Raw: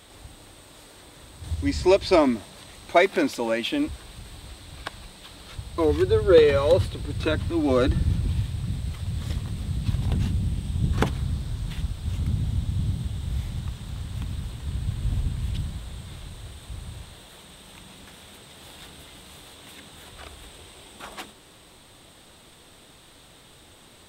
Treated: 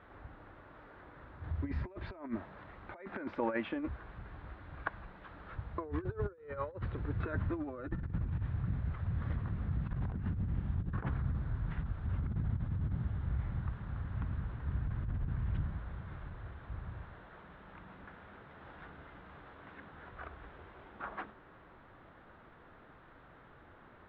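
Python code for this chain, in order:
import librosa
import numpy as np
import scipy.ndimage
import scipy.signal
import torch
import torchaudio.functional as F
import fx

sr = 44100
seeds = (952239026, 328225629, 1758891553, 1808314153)

y = fx.over_compress(x, sr, threshold_db=-26.0, ratio=-0.5)
y = fx.ladder_lowpass(y, sr, hz=1800.0, resonance_pct=45)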